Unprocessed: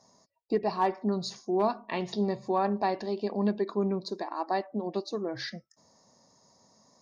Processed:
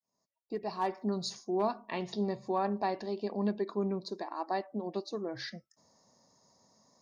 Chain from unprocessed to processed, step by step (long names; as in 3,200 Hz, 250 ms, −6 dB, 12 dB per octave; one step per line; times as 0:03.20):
fade in at the beginning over 1.05 s
0:00.54–0:01.44: high-shelf EQ 5,900 Hz +9 dB
level −4 dB